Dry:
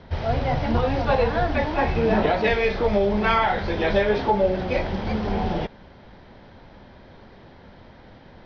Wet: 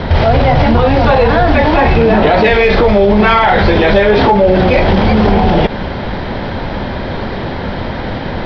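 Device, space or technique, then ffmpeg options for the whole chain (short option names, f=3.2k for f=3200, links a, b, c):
loud club master: -af "acompressor=threshold=-26dB:ratio=2,asoftclip=type=hard:threshold=-18dB,alimiter=level_in=28.5dB:limit=-1dB:release=50:level=0:latency=1,lowpass=f=5.1k:w=0.5412,lowpass=f=5.1k:w=1.3066,volume=-1dB"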